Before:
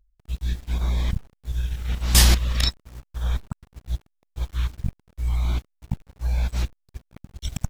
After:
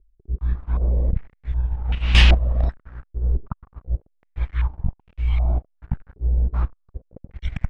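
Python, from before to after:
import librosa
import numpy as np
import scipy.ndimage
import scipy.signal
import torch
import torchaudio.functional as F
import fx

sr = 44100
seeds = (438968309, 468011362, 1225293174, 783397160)

y = fx.low_shelf(x, sr, hz=65.0, db=9.0)
y = fx.filter_held_lowpass(y, sr, hz=2.6, low_hz=390.0, high_hz=2700.0)
y = y * librosa.db_to_amplitude(-1.5)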